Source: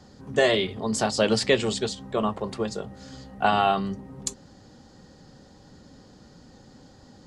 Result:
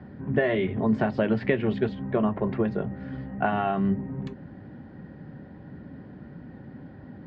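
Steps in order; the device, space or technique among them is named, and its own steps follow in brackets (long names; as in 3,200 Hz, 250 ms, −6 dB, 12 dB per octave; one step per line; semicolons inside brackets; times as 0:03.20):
bass amplifier (downward compressor 4 to 1, threshold −26 dBFS, peak gain reduction 10 dB; loudspeaker in its box 75–2,000 Hz, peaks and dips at 150 Hz +3 dB, 490 Hz −8 dB, 820 Hz −7 dB, 1,200 Hz −10 dB)
level +8.5 dB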